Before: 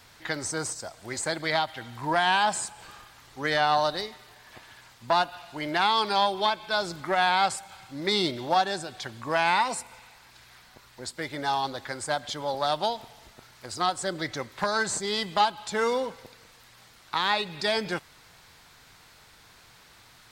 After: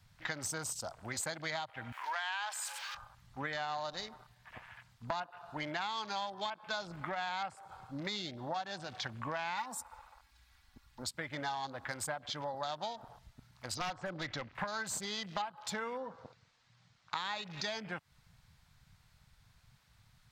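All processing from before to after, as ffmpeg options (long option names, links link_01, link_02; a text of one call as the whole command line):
ffmpeg -i in.wav -filter_complex "[0:a]asettb=1/sr,asplit=3[link_01][link_02][link_03];[link_01]atrim=end=1.924[link_04];[link_02]atrim=start=1.92:end=2.95,asetpts=PTS-STARTPTS,afade=type=in:duration=0.004:curve=qsin,afade=type=out:start_time=1.026:duration=0.004:curve=qsin,aeval=exprs='val(0)+0.5*0.0141*sgn(val(0))':channel_layout=same,highpass=1300,acrossover=split=2800[link_05][link_06];[link_06]acompressor=threshold=-34dB:ratio=4:attack=1:release=60[link_07];[link_05][link_07]amix=inputs=2:normalize=0[link_08];[link_03]atrim=start=2.946[link_09];[link_04][link_08]acrossfade=duration=0.004:curve1=hsin:curve2=qsin[link_10];[link_10][link_09]acrossfade=duration=0.004:curve1=qsin:curve2=hsin,asettb=1/sr,asplit=3[link_11][link_12][link_13];[link_11]atrim=end=9.574[link_14];[link_12]atrim=start=9.57:end=11.03,asetpts=PTS-STARTPTS,afade=type=in:duration=0.004:curve=qsin,afade=type=out:start_time=1.456:duration=0.004:curve=qsin,equalizer=frequency=540:width_type=o:width=0.23:gain=-11.5,aecho=1:1:3.6:0.5,atrim=end_sample=64386,acrusher=bits=5:mode=log:mix=0:aa=0.000001[link_15];[link_13]atrim=start=11.026[link_16];[link_14][link_15]acrossfade=duration=0.004:curve1=hsin:curve2=qsin[link_17];[link_17][link_16]acrossfade=duration=0.004:curve1=qsin:curve2=hsin,asettb=1/sr,asplit=3[link_18][link_19][link_20];[link_18]atrim=end=13.764[link_21];[link_19]atrim=start=13.76:end=14.55,asetpts=PTS-STARTPTS,afade=type=in:duration=0.004:curve=qsin,afade=type=out:start_time=0.786:duration=0.004:curve=qsin,lowpass=frequency=5500:width=0.5412,lowpass=frequency=5500:width=1.3066,aeval=exprs='0.0708*(abs(mod(val(0)/0.0708+3,4)-2)-1)':channel_layout=same[link_22];[link_20]atrim=start=14.546[link_23];[link_21][link_22]acrossfade=duration=0.004:curve1=hsin:curve2=qsin[link_24];[link_24][link_23]acrossfade=duration=0.004:curve1=qsin:curve2=hsin,asettb=1/sr,asplit=3[link_25][link_26][link_27];[link_25]atrim=end=15.984[link_28];[link_26]atrim=start=15.98:end=17.34,asetpts=PTS-STARTPTS,afade=type=in:duration=0.004:curve=qsin,afade=type=out:start_time=1.356:duration=0.004:curve=qsin,lowpass=frequency=6900:width=0.5412,lowpass=frequency=6900:width=1.3066,lowshelf=frequency=61:gain=-7[link_29];[link_27]atrim=start=17.336[link_30];[link_28][link_29]acrossfade=duration=0.004:curve1=hsin:curve2=qsin[link_31];[link_31][link_30]acrossfade=duration=0.004:curve1=qsin:curve2=hsin,acompressor=threshold=-34dB:ratio=8,equalizer=frequency=380:width=2.1:gain=-9,afwtdn=0.00398" out.wav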